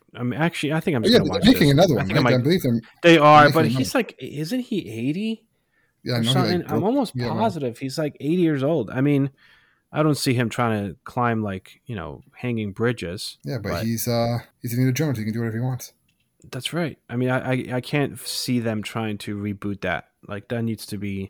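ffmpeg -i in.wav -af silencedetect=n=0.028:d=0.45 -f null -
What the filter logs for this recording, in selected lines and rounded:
silence_start: 5.35
silence_end: 6.06 | silence_duration: 0.72
silence_start: 9.28
silence_end: 9.93 | silence_duration: 0.66
silence_start: 15.86
silence_end: 16.53 | silence_duration: 0.67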